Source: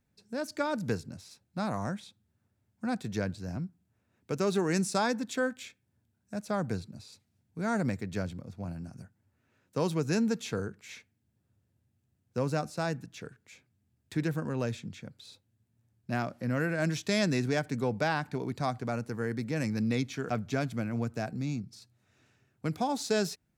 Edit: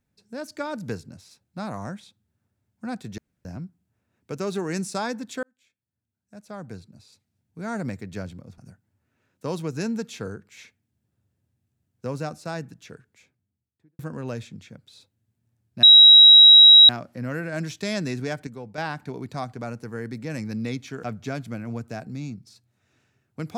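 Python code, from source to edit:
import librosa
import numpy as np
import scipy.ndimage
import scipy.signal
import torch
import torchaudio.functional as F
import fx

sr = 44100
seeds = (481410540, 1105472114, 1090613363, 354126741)

y = fx.studio_fade_out(x, sr, start_s=13.26, length_s=1.05)
y = fx.edit(y, sr, fx.room_tone_fill(start_s=3.18, length_s=0.27),
    fx.fade_in_span(start_s=5.43, length_s=2.42),
    fx.cut(start_s=8.58, length_s=0.32),
    fx.insert_tone(at_s=16.15, length_s=1.06, hz=3850.0, db=-6.5),
    fx.clip_gain(start_s=17.73, length_s=0.31, db=-8.0), tone=tone)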